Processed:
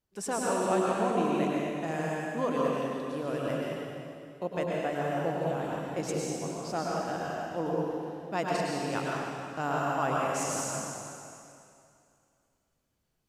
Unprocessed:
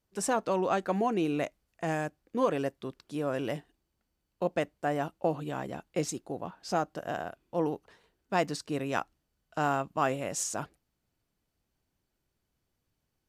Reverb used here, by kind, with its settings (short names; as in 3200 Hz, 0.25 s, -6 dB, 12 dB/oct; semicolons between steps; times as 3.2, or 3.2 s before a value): plate-style reverb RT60 2.5 s, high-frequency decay 0.95×, pre-delay 90 ms, DRR -4.5 dB; gain -4.5 dB